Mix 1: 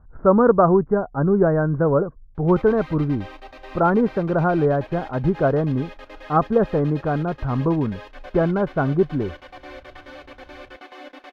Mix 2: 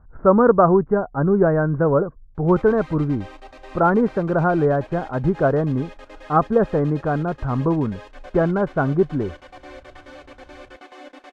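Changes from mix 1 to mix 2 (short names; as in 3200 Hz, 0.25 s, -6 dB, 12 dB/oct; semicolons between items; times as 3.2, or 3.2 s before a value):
background: add tape spacing loss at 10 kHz 28 dB; master: remove air absorption 300 m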